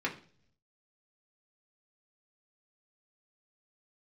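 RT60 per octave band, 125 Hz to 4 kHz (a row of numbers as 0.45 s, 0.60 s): 1.1 s, 0.75 s, 0.55 s, 0.40 s, 0.40 s, 0.50 s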